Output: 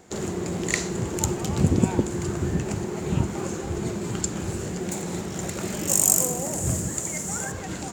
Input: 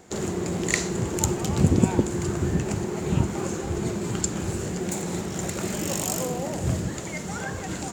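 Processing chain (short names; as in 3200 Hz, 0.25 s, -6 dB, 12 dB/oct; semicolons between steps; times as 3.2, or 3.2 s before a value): 5.88–7.52 resonant high shelf 5700 Hz +11 dB, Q 1.5; gain -1 dB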